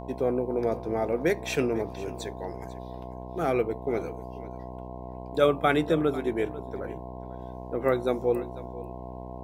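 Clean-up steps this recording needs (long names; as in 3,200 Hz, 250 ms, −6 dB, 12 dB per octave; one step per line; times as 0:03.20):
hum removal 62.5 Hz, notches 17
notch filter 680 Hz, Q 30
echo removal 494 ms −17 dB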